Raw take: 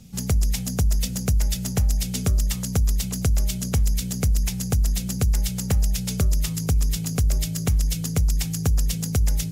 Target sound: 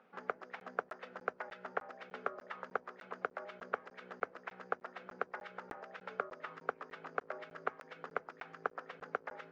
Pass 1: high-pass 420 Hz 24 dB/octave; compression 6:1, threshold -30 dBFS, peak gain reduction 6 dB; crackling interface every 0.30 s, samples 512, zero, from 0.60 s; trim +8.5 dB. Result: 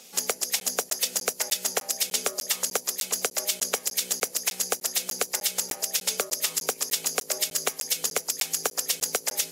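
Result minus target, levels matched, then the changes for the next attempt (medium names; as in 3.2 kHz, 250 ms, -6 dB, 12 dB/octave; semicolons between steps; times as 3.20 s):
2 kHz band -9.5 dB
add after compression: four-pole ladder low-pass 1.6 kHz, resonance 55%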